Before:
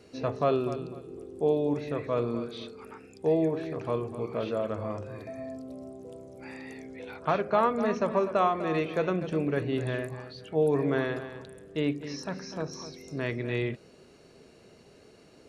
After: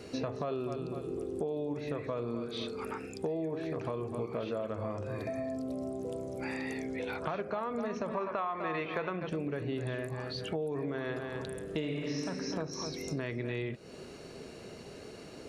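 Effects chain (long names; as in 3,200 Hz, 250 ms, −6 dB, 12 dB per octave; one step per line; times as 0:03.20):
0:11.65–0:12.24: thrown reverb, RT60 1.7 s, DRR −1.5 dB
brickwall limiter −20.5 dBFS, peak gain reduction 8.5 dB
0:08.17–0:09.29: octave-band graphic EQ 1,000/2,000/4,000/8,000 Hz +9/+7/+4/−11 dB
downward compressor 6 to 1, threshold −41 dBFS, peak gain reduction 20.5 dB
level +8 dB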